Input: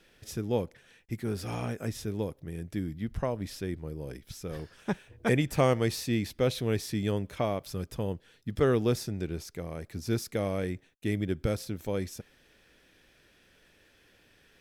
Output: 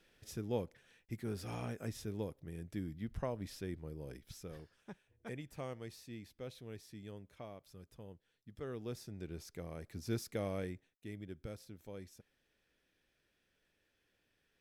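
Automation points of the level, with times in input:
0:04.37 −8 dB
0:04.90 −20 dB
0:08.63 −20 dB
0:09.52 −8 dB
0:10.60 −8 dB
0:11.07 −17 dB

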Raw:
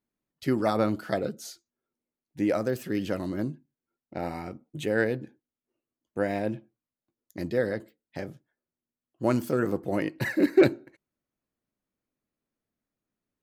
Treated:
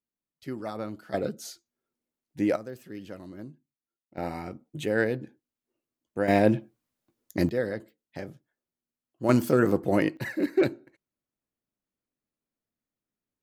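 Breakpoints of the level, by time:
−10 dB
from 0:01.14 +0.5 dB
from 0:02.56 −11.5 dB
from 0:04.18 0 dB
from 0:06.28 +9 dB
from 0:07.49 −2 dB
from 0:09.29 +4.5 dB
from 0:10.17 −4.5 dB

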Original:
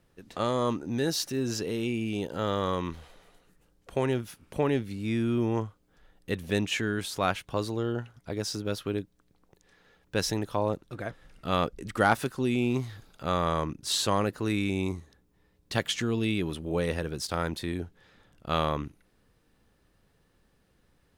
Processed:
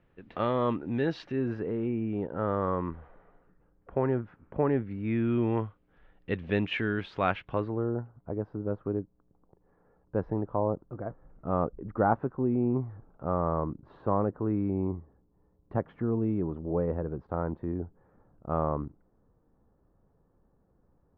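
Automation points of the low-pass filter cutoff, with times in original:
low-pass filter 24 dB per octave
0:01.22 2,800 Hz
0:01.71 1,600 Hz
0:04.58 1,600 Hz
0:05.43 2,800 Hz
0:07.49 2,800 Hz
0:07.90 1,100 Hz

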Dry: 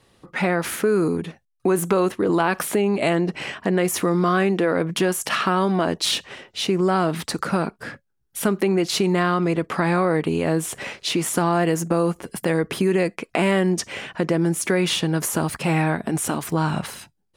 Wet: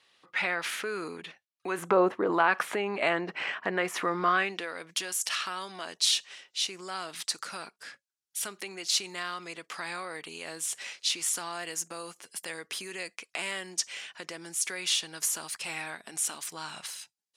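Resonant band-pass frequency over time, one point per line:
resonant band-pass, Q 0.88
0:01.67 3,000 Hz
0:02.00 670 Hz
0:02.49 1,600 Hz
0:04.27 1,600 Hz
0:04.73 6,200 Hz

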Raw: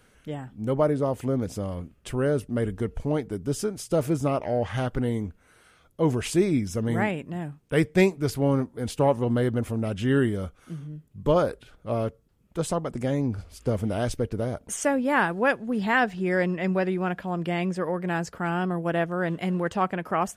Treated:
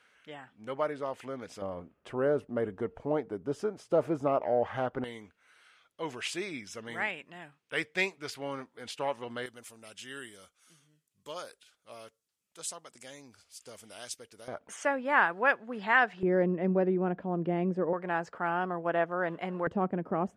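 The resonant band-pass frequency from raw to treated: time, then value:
resonant band-pass, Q 0.79
2,100 Hz
from 0:01.62 790 Hz
from 0:05.04 2,700 Hz
from 0:09.46 7,200 Hz
from 0:14.48 1,400 Hz
from 0:16.23 350 Hz
from 0:17.93 950 Hz
from 0:19.67 280 Hz

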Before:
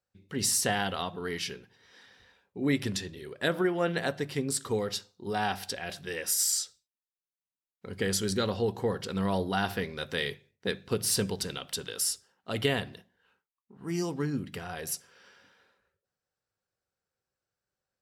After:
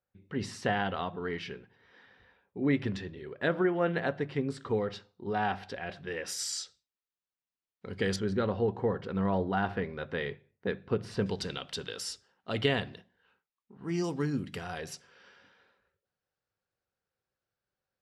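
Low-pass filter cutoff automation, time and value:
2,300 Hz
from 0:06.25 4,700 Hz
from 0:08.16 1,800 Hz
from 0:11.26 4,600 Hz
from 0:14.04 9,300 Hz
from 0:14.78 4,400 Hz

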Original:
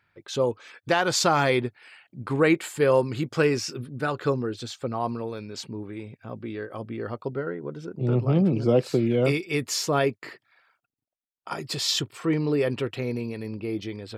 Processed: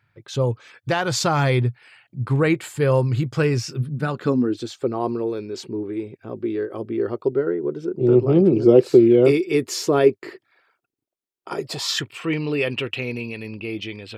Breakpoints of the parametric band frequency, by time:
parametric band +14.5 dB 0.65 octaves
0:03.72 120 Hz
0:04.72 370 Hz
0:11.54 370 Hz
0:12.12 2,700 Hz

